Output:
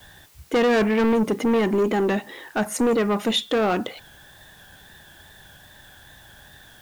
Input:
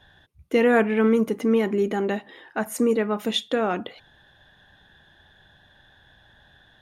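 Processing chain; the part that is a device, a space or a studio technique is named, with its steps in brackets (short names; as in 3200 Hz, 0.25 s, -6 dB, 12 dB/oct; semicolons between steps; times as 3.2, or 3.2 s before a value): compact cassette (soft clip -22.5 dBFS, distortion -9 dB; LPF 10000 Hz; wow and flutter; white noise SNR 31 dB); gain +6.5 dB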